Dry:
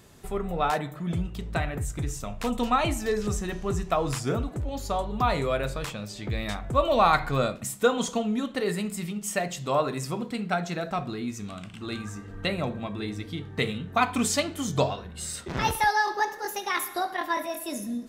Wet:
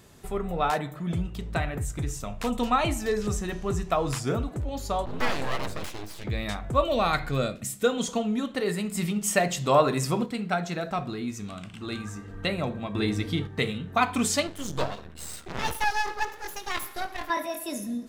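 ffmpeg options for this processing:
ffmpeg -i in.wav -filter_complex "[0:a]asplit=3[link_01][link_02][link_03];[link_01]afade=type=out:start_time=5.05:duration=0.02[link_04];[link_02]aeval=exprs='abs(val(0))':channel_layout=same,afade=type=in:start_time=5.05:duration=0.02,afade=type=out:start_time=6.23:duration=0.02[link_05];[link_03]afade=type=in:start_time=6.23:duration=0.02[link_06];[link_04][link_05][link_06]amix=inputs=3:normalize=0,asettb=1/sr,asplit=3[link_07][link_08][link_09];[link_07]atrim=end=6.844[link_10];[link_08]atrim=start=6.84:end=8.09,asetpts=PTS-STARTPTS,afade=type=in:duration=0.004:curve=qsin,afade=type=out:start_time=1.246:duration=0.004:curve=qsin,equalizer=frequency=960:width=1.5:gain=-8.5[link_11];[link_09]atrim=start=8.086[link_12];[link_10][link_11]acrossfade=duration=0.004:curve1=hsin:curve2=qsin[link_13];[link_13][link_12]acrossfade=duration=0.004:curve1=qsin:curve2=hsin,asettb=1/sr,asplit=3[link_14][link_15][link_16];[link_14]atrim=end=8.954[link_17];[link_15]atrim=start=8.95:end=10.26,asetpts=PTS-STARTPTS,afade=type=in:duration=0.004:curve=qsin,afade=type=out:start_time=1.306:duration=0.004:curve=qsin,acontrast=24[link_18];[link_16]atrim=start=10.256[link_19];[link_17][link_18]acrossfade=duration=0.004:curve1=hsin:curve2=qsin[link_20];[link_20][link_19]acrossfade=duration=0.004:curve1=qsin:curve2=hsin,asettb=1/sr,asplit=3[link_21][link_22][link_23];[link_21]atrim=end=14.474[link_24];[link_22]atrim=start=14.47:end=17.3,asetpts=PTS-STARTPTS,afade=type=in:duration=0.004:curve=qsin,afade=type=out:start_time=2.826:duration=0.004:curve=qsin,aeval=exprs='max(val(0),0)':channel_layout=same[link_25];[link_23]atrim=start=17.296[link_26];[link_24][link_25]acrossfade=duration=0.004:curve1=hsin:curve2=qsin[link_27];[link_27][link_26]acrossfade=duration=0.004:curve1=qsin:curve2=hsin,asplit=3[link_28][link_29][link_30];[link_28]atrim=end=12.952[link_31];[link_29]atrim=start=12.948:end=13.472,asetpts=PTS-STARTPTS,volume=6.5dB[link_32];[link_30]atrim=start=13.468[link_33];[link_31][link_32]acrossfade=duration=0.004:curve1=hsin:curve2=hsin[link_34];[link_34][link_33]acrossfade=duration=0.004:curve1=hsin:curve2=hsin" out.wav

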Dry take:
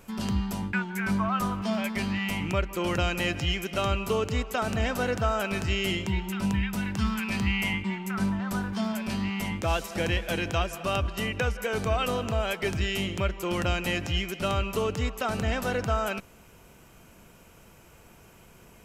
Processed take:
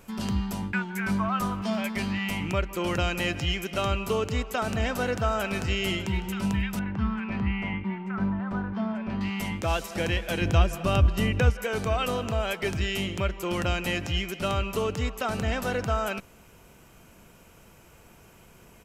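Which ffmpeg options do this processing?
ffmpeg -i in.wav -filter_complex "[0:a]asplit=2[link_01][link_02];[link_02]afade=type=in:start_time=4.66:duration=0.01,afade=type=out:start_time=5.81:duration=0.01,aecho=0:1:600|1200|1800:0.125893|0.0440624|0.0154218[link_03];[link_01][link_03]amix=inputs=2:normalize=0,asettb=1/sr,asplit=3[link_04][link_05][link_06];[link_04]atrim=end=6.794[link_07];[link_05]atrim=start=6.79:end=9.21,asetpts=PTS-STARTPTS,afade=type=in:duration=0.004:curve=qsin,afade=type=out:start_time=2.416:duration=0.004:curve=qsin,lowpass=1700[link_08];[link_06]atrim=start=9.206[link_09];[link_07][link_08]acrossfade=duration=0.004:curve1=hsin:curve2=qsin[link_10];[link_10][link_09]acrossfade=duration=0.004:curve1=qsin:curve2=hsin,asettb=1/sr,asplit=3[link_11][link_12][link_13];[link_11]atrim=end=10.414[link_14];[link_12]atrim=start=10.41:end=11.5,asetpts=PTS-STARTPTS,afade=type=in:duration=0.004:curve=qsin,afade=type=out:start_time=1.086:duration=0.004:curve=qsin,lowshelf=frequency=280:gain=10.5[link_15];[link_13]atrim=start=11.496[link_16];[link_14][link_15]acrossfade=duration=0.004:curve1=hsin:curve2=qsin[link_17];[link_17][link_16]acrossfade=duration=0.004:curve1=qsin:curve2=hsin" out.wav

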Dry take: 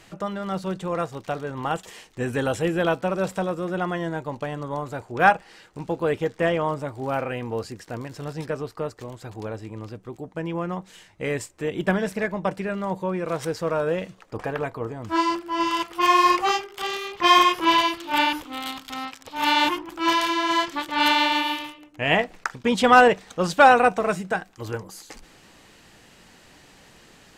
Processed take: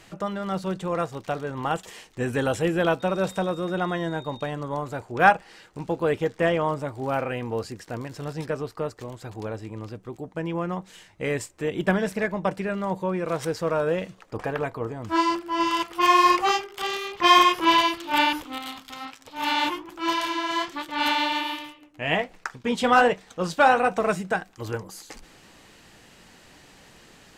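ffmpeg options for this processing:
ffmpeg -i in.wav -filter_complex "[0:a]asettb=1/sr,asplit=3[link_01][link_02][link_03];[link_01]atrim=end=3.004[link_04];[link_02]atrim=start=3:end=4.5,asetpts=PTS-STARTPTS,afade=type=in:duration=0.004:curve=qsin,afade=type=out:start_time=1.496:duration=0.004:curve=qsin,aeval=exprs='val(0)+0.00501*sin(2*PI*3700*n/s)':channel_layout=same[link_05];[link_03]atrim=start=4.496[link_06];[link_04][link_05]acrossfade=duration=0.004:curve1=hsin:curve2=qsin[link_07];[link_07][link_06]acrossfade=duration=0.004:curve1=qsin:curve2=hsin,asettb=1/sr,asplit=3[link_08][link_09][link_10];[link_08]atrim=end=18.584[link_11];[link_09]atrim=start=18.58:end=23.92,asetpts=PTS-STARTPTS,afade=type=in:duration=0.004:curve=qsin,afade=type=out:start_time=5.336:duration=0.004:curve=qsin,flanger=delay=6.2:depth=7.2:regen=-57:speed=1.3:shape=sinusoidal[link_12];[link_10]atrim=start=23.916[link_13];[link_11][link_12]acrossfade=duration=0.004:curve1=hsin:curve2=qsin[link_14];[link_14][link_13]acrossfade=duration=0.004:curve1=qsin:curve2=hsin" out.wav

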